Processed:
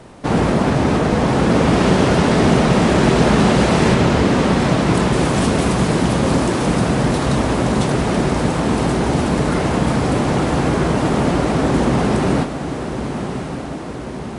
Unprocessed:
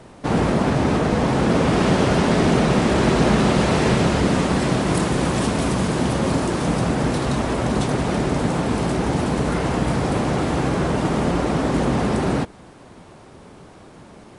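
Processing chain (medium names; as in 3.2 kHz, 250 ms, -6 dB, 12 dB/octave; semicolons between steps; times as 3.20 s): 3.94–5.13 s: treble shelf 8.7 kHz -11 dB; echo that smears into a reverb 1144 ms, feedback 60%, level -9 dB; trim +3 dB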